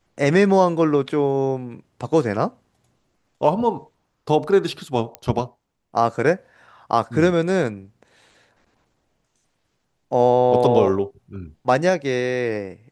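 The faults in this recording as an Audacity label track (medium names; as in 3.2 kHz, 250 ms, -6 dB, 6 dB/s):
5.150000	5.150000	pop -15 dBFS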